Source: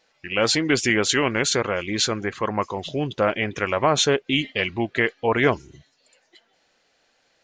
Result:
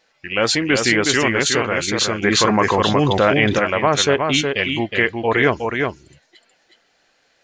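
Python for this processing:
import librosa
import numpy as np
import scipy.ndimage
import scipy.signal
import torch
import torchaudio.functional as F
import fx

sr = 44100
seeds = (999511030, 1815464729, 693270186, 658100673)

y = fx.peak_eq(x, sr, hz=1700.0, db=2.5, octaves=0.77)
y = y + 10.0 ** (-4.5 / 20.0) * np.pad(y, (int(366 * sr / 1000.0), 0))[:len(y)]
y = fx.env_flatten(y, sr, amount_pct=70, at=(2.22, 3.58), fade=0.02)
y = F.gain(torch.from_numpy(y), 2.0).numpy()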